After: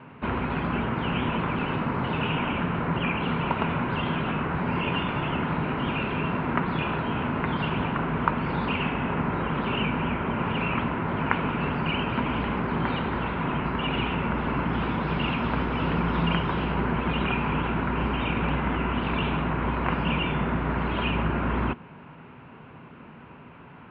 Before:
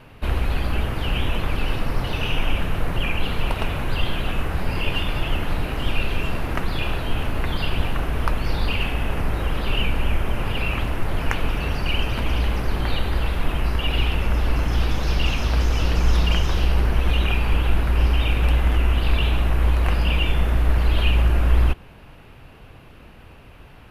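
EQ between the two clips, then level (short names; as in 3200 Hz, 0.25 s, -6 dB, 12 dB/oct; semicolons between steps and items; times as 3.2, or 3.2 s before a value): air absorption 170 m; speaker cabinet 120–3300 Hz, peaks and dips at 160 Hz +9 dB, 240 Hz +9 dB, 390 Hz +4 dB, 980 Hz +9 dB, 1400 Hz +6 dB, 2200 Hz +3 dB; -2.0 dB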